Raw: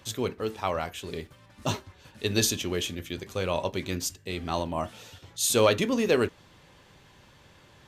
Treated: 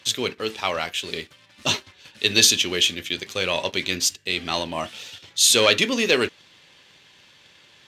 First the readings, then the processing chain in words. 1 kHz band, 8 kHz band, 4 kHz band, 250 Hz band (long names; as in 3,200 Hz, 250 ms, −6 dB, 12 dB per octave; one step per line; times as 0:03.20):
+2.5 dB, +9.0 dB, +13.0 dB, +1.0 dB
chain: leveller curve on the samples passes 1
meter weighting curve D
level −1 dB